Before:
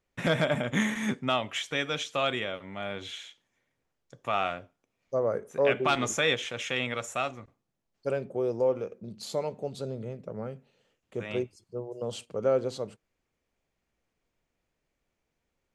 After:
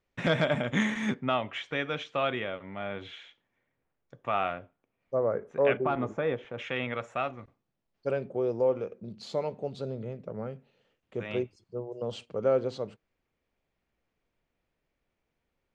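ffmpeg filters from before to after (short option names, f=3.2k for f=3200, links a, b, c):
-af "asetnsamples=n=441:p=0,asendcmd='1.14 lowpass f 2500;5.77 lowpass f 1000;6.58 lowpass f 2300;7.39 lowpass f 4200',lowpass=5.4k"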